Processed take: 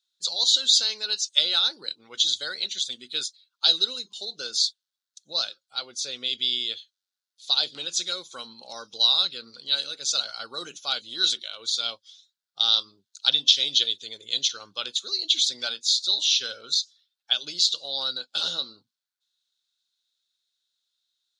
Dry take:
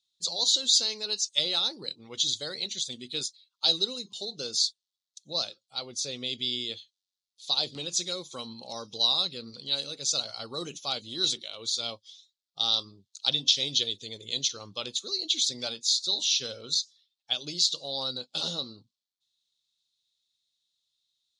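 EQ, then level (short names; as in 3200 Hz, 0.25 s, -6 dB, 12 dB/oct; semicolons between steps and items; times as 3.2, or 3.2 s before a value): HPF 490 Hz 6 dB/oct; dynamic EQ 3300 Hz, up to +6 dB, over -40 dBFS, Q 1.6; bell 1500 Hz +13 dB 0.35 oct; 0.0 dB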